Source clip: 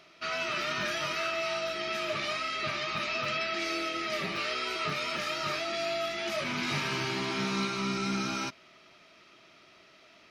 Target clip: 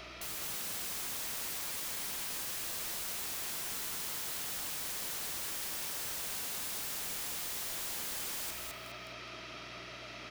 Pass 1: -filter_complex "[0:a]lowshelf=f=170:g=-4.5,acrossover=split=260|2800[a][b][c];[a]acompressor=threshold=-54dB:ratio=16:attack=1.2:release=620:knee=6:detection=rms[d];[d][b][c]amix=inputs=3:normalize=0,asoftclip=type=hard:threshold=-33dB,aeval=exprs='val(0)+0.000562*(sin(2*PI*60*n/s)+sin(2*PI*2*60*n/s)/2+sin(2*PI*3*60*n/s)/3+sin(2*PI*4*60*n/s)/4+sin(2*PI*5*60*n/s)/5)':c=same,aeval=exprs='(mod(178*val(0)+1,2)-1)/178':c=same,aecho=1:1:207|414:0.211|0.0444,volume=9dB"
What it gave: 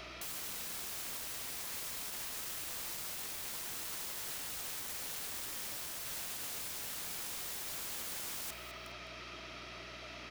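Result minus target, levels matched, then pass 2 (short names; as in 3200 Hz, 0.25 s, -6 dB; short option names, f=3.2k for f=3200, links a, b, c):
hard clip: distortion +35 dB; echo-to-direct -10 dB
-filter_complex "[0:a]lowshelf=f=170:g=-4.5,acrossover=split=260|2800[a][b][c];[a]acompressor=threshold=-54dB:ratio=16:attack=1.2:release=620:knee=6:detection=rms[d];[d][b][c]amix=inputs=3:normalize=0,asoftclip=type=hard:threshold=-22.5dB,aeval=exprs='val(0)+0.000562*(sin(2*PI*60*n/s)+sin(2*PI*2*60*n/s)/2+sin(2*PI*3*60*n/s)/3+sin(2*PI*4*60*n/s)/4+sin(2*PI*5*60*n/s)/5)':c=same,aeval=exprs='(mod(178*val(0)+1,2)-1)/178':c=same,aecho=1:1:207|414|621:0.708|0.149|0.0312,volume=9dB"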